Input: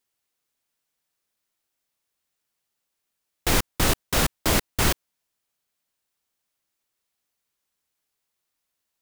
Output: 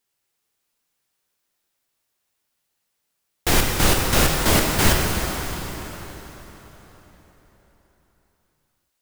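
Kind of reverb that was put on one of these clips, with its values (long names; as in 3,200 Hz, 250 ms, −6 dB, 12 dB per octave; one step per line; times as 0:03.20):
dense smooth reverb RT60 4.4 s, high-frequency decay 0.8×, DRR −0.5 dB
level +2 dB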